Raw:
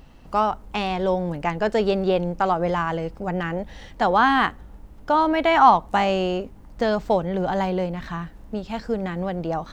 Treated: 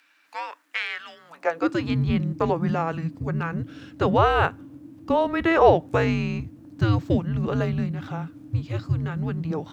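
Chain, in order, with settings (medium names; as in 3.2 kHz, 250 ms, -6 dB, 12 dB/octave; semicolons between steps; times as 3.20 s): dynamic bell 1.8 kHz, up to +4 dB, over -35 dBFS, Q 1.3; frequency shift -330 Hz; high-pass sweep 1.6 kHz -> 96 Hz, 1.16–2.11 s; trim -3 dB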